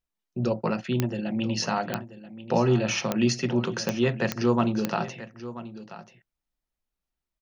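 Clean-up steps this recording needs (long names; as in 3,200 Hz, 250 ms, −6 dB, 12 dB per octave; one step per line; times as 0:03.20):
click removal
echo removal 984 ms −14.5 dB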